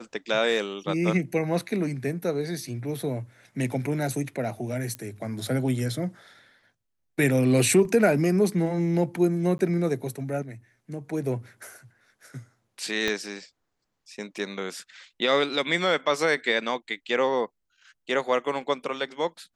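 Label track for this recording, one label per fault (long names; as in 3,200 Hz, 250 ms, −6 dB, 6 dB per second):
4.950000	4.950000	click −18 dBFS
9.580000	9.590000	drop-out
13.080000	13.080000	click −12 dBFS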